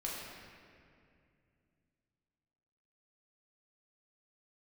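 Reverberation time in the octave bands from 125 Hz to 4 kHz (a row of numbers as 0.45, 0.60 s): 3.6, 3.4, 2.6, 2.1, 2.2, 1.6 s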